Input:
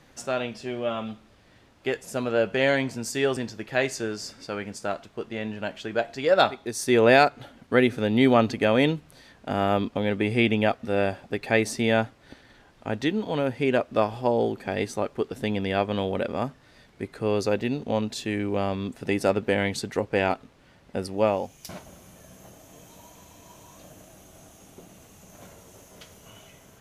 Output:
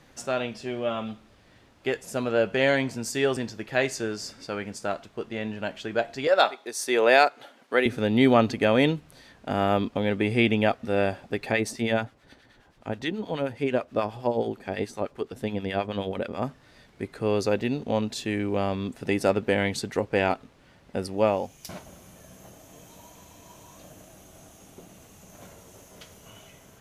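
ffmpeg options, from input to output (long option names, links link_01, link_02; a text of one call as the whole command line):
ffmpeg -i in.wav -filter_complex "[0:a]asettb=1/sr,asplit=3[link_01][link_02][link_03];[link_01]atrim=end=6.274[link_04];[link_02]atrim=start=6.27:end=7.86,asetpts=PTS-STARTPTS,afade=type=in:duration=0.004:curve=qsin,afade=type=out:start_time=1.586:duration=0.004:curve=qsin,highpass=430[link_05];[link_03]atrim=start=7.856[link_06];[link_04][link_05]acrossfade=duration=0.004:curve1=hsin:curve2=qsin[link_07];[link_07][link_06]acrossfade=duration=0.004:curve1=qsin:curve2=hsin,asettb=1/sr,asplit=3[link_08][link_09][link_10];[link_08]atrim=end=11.524[link_11];[link_09]atrim=start=11.52:end=16.43,asetpts=PTS-STARTPTS,afade=type=in:duration=0.004:curve=qsin,afade=type=out:start_time=4.906:duration=0.004:curve=qsin,acrossover=split=980[link_12][link_13];[link_12]aeval=exprs='val(0)*(1-0.7/2+0.7/2*cos(2*PI*9.4*n/s))':channel_layout=same[link_14];[link_13]aeval=exprs='val(0)*(1-0.7/2-0.7/2*cos(2*PI*9.4*n/s))':channel_layout=same[link_15];[link_14][link_15]amix=inputs=2:normalize=0[link_16];[link_10]atrim=start=16.426[link_17];[link_11][link_16]acrossfade=duration=0.004:curve1=hsin:curve2=qsin[link_18];[link_18][link_17]acrossfade=duration=0.004:curve1=qsin:curve2=hsin" out.wav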